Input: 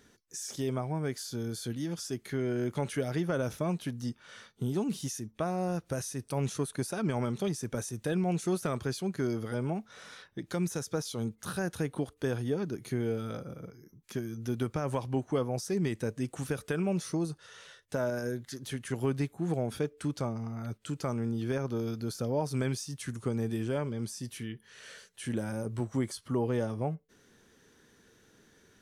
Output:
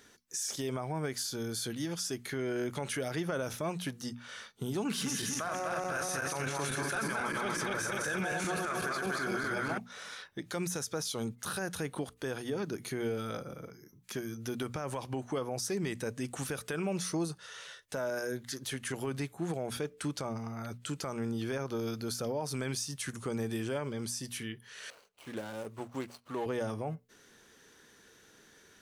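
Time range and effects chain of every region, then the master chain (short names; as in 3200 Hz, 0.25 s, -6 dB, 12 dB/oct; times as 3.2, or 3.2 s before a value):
4.85–9.78 regenerating reverse delay 0.124 s, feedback 72%, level -1 dB + bell 1600 Hz +15 dB 1.3 oct + notch 1900 Hz, Q 14
24.9–26.46 median filter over 25 samples + low shelf 310 Hz -11.5 dB
whole clip: low shelf 450 Hz -8.5 dB; notches 60/120/180/240 Hz; limiter -30.5 dBFS; gain +5 dB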